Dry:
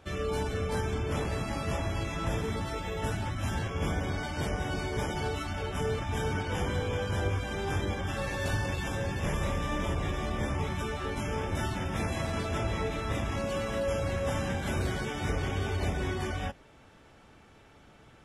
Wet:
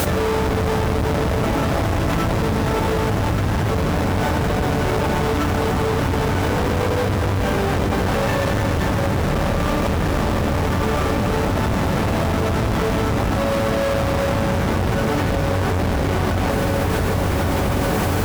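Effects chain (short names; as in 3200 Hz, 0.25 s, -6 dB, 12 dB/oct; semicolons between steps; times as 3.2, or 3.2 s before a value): half-waves squared off; LPF 2100 Hz 6 dB/oct; low shelf 97 Hz -8 dB; notch 360 Hz, Q 12; in parallel at -5.5 dB: sample-and-hold 10×; on the sum: added noise white -56 dBFS; one-sided clip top -30.5 dBFS; on a send: diffused feedback echo 1.409 s, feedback 45%, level -9 dB; on the sum: fast leveller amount 100%; gain +5 dB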